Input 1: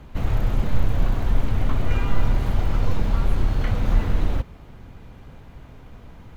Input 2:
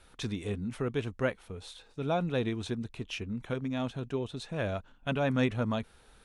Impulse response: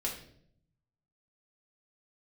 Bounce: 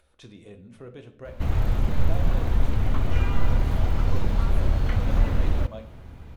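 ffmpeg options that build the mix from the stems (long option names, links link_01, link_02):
-filter_complex "[0:a]adelay=1250,volume=-2dB[link_01];[1:a]equalizer=frequency=570:width_type=o:width=0.29:gain=12,alimiter=limit=-18.5dB:level=0:latency=1:release=368,acompressor=mode=upward:threshold=-51dB:ratio=2.5,volume=-16dB,asplit=2[link_02][link_03];[link_03]volume=-3.5dB[link_04];[2:a]atrim=start_sample=2205[link_05];[link_04][link_05]afir=irnorm=-1:irlink=0[link_06];[link_01][link_02][link_06]amix=inputs=3:normalize=0,equalizer=frequency=72:width_type=o:width=0.29:gain=7.5"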